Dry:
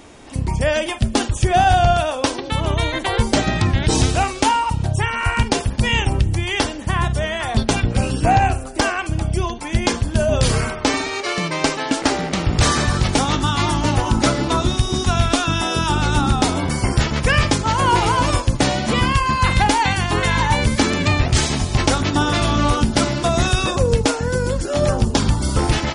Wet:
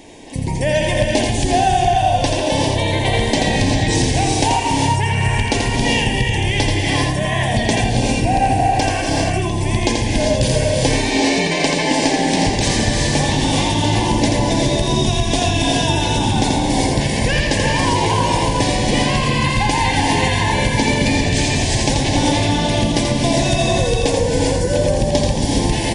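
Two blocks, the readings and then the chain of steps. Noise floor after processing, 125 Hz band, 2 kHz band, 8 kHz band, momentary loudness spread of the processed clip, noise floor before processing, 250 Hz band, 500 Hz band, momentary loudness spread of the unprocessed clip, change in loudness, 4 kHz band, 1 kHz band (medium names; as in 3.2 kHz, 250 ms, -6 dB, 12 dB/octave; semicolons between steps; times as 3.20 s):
-20 dBFS, +1.0 dB, +1.5 dB, +3.0 dB, 2 LU, -29 dBFS, +3.0 dB, +3.0 dB, 5 LU, +2.0 dB, +3.0 dB, +0.5 dB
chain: gated-style reverb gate 420 ms rising, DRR 0 dB; compression, threshold -14 dBFS, peak gain reduction 7.5 dB; Butterworth band-stop 1.3 kHz, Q 1.9; peaking EQ 71 Hz -11 dB 0.55 oct; on a send: delay 84 ms -4.5 dB; on the sum: trim +2 dB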